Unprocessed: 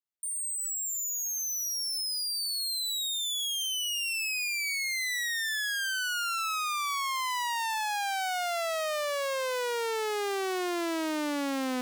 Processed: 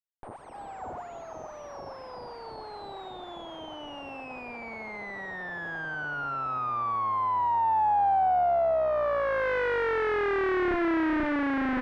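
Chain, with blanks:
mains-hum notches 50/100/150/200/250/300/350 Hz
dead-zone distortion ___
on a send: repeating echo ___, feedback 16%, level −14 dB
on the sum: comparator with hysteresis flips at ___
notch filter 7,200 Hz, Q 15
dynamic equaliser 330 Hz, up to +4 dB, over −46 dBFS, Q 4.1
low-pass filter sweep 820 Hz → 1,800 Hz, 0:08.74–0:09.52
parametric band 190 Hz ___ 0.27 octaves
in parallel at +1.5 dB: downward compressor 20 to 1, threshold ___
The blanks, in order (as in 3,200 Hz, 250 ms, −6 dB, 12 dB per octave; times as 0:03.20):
−59 dBFS, 310 ms, −39.5 dBFS, −3.5 dB, −35 dBFS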